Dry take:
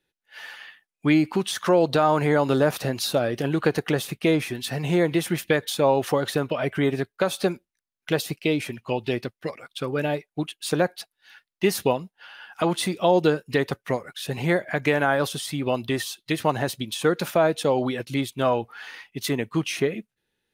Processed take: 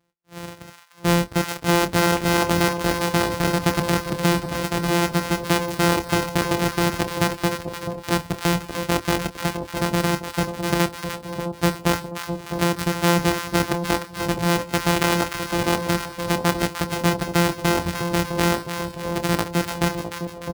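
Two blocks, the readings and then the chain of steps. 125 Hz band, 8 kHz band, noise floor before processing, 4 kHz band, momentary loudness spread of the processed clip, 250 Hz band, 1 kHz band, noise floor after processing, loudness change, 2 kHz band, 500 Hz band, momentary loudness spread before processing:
+4.5 dB, +6.0 dB, under -85 dBFS, +4.5 dB, 8 LU, +2.5 dB, +4.0 dB, -42 dBFS, +2.0 dB, +4.0 dB, -1.5 dB, 12 LU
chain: sorted samples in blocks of 256 samples; reverb removal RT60 0.83 s; high-pass 40 Hz; in parallel at -2.5 dB: compressor with a negative ratio -26 dBFS; on the sum: doubling 27 ms -11 dB; on a send: two-band feedback delay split 930 Hz, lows 658 ms, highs 300 ms, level -7.5 dB

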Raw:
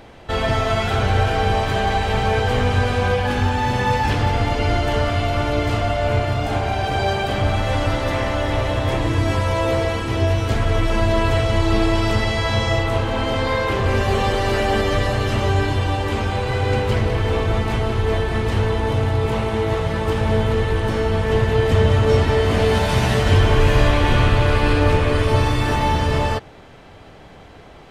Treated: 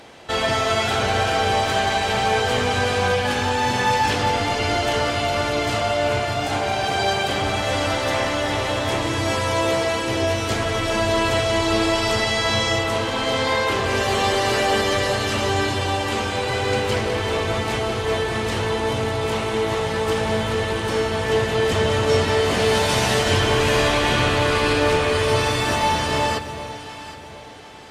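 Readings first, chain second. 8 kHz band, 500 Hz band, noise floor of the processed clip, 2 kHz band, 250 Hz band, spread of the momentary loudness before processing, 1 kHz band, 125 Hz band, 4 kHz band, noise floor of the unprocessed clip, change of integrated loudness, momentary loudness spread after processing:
+7.5 dB, 0.0 dB, -34 dBFS, +2.0 dB, -2.5 dB, 5 LU, +0.5 dB, -8.0 dB, +4.5 dB, -42 dBFS, -1.0 dB, 5 LU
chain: high-pass 240 Hz 6 dB/octave; peaking EQ 7.2 kHz +7.5 dB 2.1 oct; echo whose repeats swap between lows and highs 383 ms, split 1 kHz, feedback 60%, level -9 dB

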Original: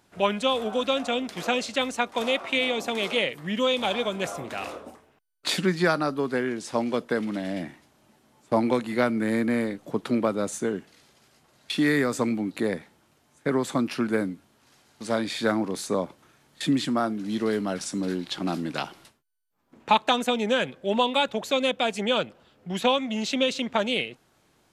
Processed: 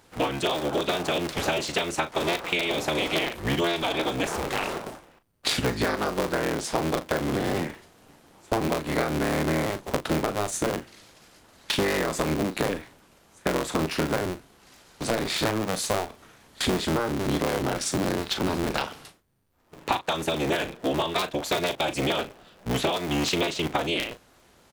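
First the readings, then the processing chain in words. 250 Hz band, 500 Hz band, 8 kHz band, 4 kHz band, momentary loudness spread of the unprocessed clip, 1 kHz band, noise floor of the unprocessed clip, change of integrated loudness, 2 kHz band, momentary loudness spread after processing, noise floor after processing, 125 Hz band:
-2.0 dB, -1.0 dB, +4.5 dB, 0.0 dB, 9 LU, -0.5 dB, -65 dBFS, -0.5 dB, 0.0 dB, 5 LU, -58 dBFS, +4.0 dB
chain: cycle switcher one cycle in 3, inverted; compression 12:1, threshold -28 dBFS, peak gain reduction 14.5 dB; doubling 38 ms -11 dB; trim +6 dB

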